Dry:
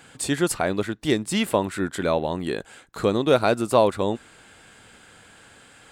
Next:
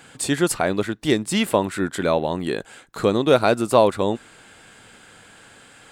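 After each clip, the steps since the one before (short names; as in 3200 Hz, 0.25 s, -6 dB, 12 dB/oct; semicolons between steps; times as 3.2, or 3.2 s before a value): bell 64 Hz -7 dB 0.64 oct; gain +2.5 dB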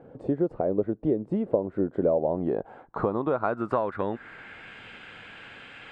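compressor 12:1, threshold -24 dBFS, peak gain reduction 15 dB; low-pass sweep 530 Hz -> 2600 Hz, 2.01–4.82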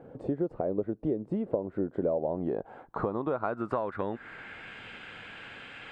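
compressor 1.5:1, threshold -34 dBFS, peak gain reduction 6 dB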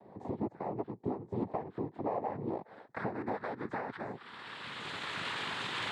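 recorder AGC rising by 13 dB/s; noise vocoder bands 6; gain -6.5 dB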